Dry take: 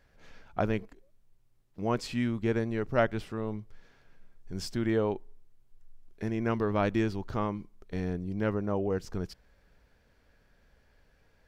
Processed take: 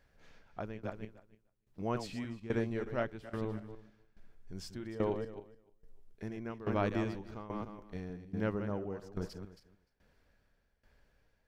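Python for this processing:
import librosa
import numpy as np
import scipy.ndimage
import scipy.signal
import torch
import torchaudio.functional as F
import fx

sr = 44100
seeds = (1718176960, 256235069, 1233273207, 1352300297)

y = fx.reverse_delay_fb(x, sr, ms=150, feedback_pct=40, wet_db=-7.0)
y = fx.tremolo_shape(y, sr, shape='saw_down', hz=1.2, depth_pct=85)
y = y * librosa.db_to_amplitude(-3.5)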